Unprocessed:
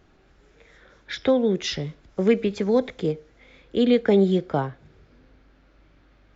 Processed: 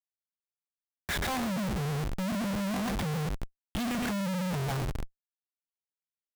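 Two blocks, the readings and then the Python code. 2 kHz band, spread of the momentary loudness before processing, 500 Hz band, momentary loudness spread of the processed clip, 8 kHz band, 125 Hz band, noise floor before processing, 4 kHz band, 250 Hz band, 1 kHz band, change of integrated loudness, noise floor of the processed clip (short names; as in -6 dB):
-1.0 dB, 13 LU, -17.0 dB, 8 LU, n/a, -1.5 dB, -58 dBFS, -5.5 dB, -8.5 dB, -2.0 dB, -9.5 dB, under -85 dBFS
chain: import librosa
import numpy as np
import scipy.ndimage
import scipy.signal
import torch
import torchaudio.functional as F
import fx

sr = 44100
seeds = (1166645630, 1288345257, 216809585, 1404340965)

p1 = scipy.signal.sosfilt(scipy.signal.ellip(3, 1.0, 40, [200.0, 670.0], 'bandstop', fs=sr, output='sos'), x)
p2 = fx.peak_eq(p1, sr, hz=300.0, db=12.0, octaves=0.46)
p3 = p2 + fx.echo_feedback(p2, sr, ms=115, feedback_pct=28, wet_db=-7, dry=0)
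p4 = fx.env_lowpass_down(p3, sr, base_hz=320.0, full_db=-21.0)
p5 = fx.low_shelf(p4, sr, hz=130.0, db=6.5)
p6 = fx.schmitt(p5, sr, flips_db=-39.5)
y = F.gain(torch.from_numpy(p6), -2.5).numpy()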